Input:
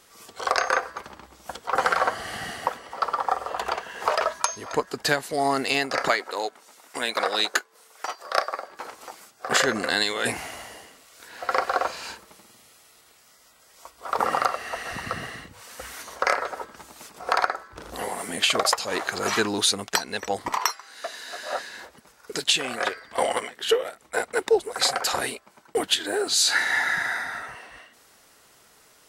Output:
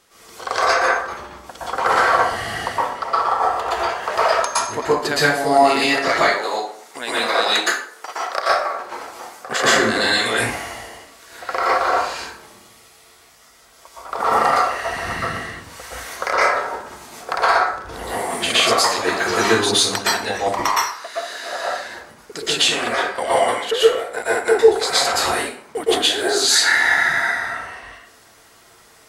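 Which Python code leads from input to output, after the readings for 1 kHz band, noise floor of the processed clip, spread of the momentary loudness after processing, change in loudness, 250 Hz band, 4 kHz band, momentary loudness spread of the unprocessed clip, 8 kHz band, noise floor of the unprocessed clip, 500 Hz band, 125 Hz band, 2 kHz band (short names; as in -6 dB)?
+8.0 dB, -50 dBFS, 17 LU, +7.0 dB, +7.5 dB, +6.0 dB, 17 LU, +5.5 dB, -57 dBFS, +8.0 dB, +7.5 dB, +7.5 dB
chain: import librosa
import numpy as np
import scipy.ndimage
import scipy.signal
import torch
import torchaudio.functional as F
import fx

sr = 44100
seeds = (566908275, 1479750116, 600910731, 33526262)

y = fx.high_shelf(x, sr, hz=9400.0, db=-4.5)
y = fx.rev_plate(y, sr, seeds[0], rt60_s=0.53, hf_ratio=0.75, predelay_ms=105, drr_db=-8.5)
y = F.gain(torch.from_numpy(y), -1.5).numpy()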